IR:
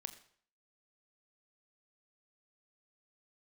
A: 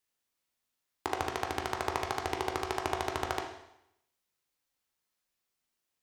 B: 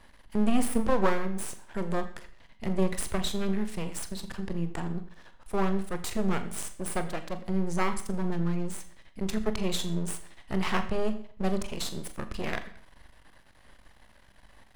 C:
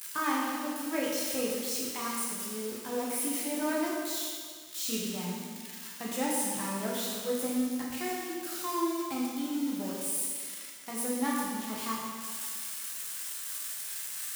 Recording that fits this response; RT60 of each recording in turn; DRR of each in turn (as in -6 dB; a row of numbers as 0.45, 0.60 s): B; 0.80, 0.55, 1.8 s; 2.0, 9.0, -5.5 dB